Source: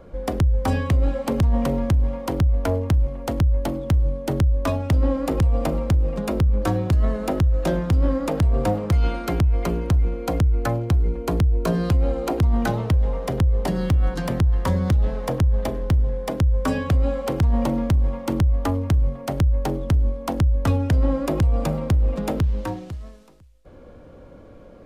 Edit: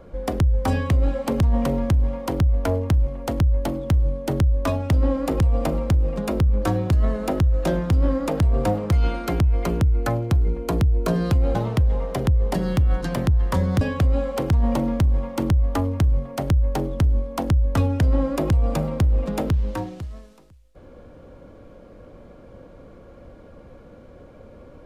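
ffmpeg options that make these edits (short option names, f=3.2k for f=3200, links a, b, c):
-filter_complex "[0:a]asplit=4[a][b][c][d];[a]atrim=end=9.812[e];[b]atrim=start=10.398:end=12.142[f];[c]atrim=start=12.678:end=14.942[g];[d]atrim=start=16.708[h];[e][f]acrossfade=d=0.004:c1=hsin:c2=hsin[i];[i][g]acrossfade=d=0.004:c1=hsin:c2=hsin[j];[j][h]acrossfade=d=0.004:c1=hsin:c2=hsin"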